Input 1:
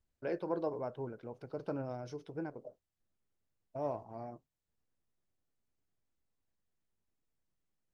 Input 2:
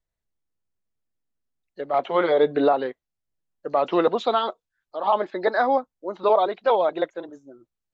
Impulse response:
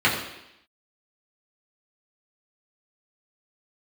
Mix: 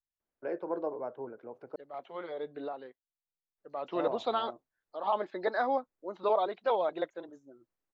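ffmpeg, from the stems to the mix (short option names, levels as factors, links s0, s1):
-filter_complex "[0:a]acrossover=split=250 2100:gain=0.126 1 0.158[s0][s1][s2];[s0][s1][s2]amix=inputs=3:normalize=0,adelay=200,volume=1.26,asplit=3[s3][s4][s5];[s3]atrim=end=1.76,asetpts=PTS-STARTPTS,afade=t=out:st=1.756:d=0.004:c=hsin[s6];[s4]atrim=start=1.76:end=3.58,asetpts=PTS-STARTPTS,volume=0[s7];[s5]atrim=start=3.58,asetpts=PTS-STARTPTS,afade=t=in:d=0.004:c=hsin[s8];[s6][s7][s8]concat=n=3:v=0:a=1[s9];[1:a]volume=0.355,afade=t=in:st=3.66:d=0.63:silence=0.281838[s10];[s9][s10]amix=inputs=2:normalize=0"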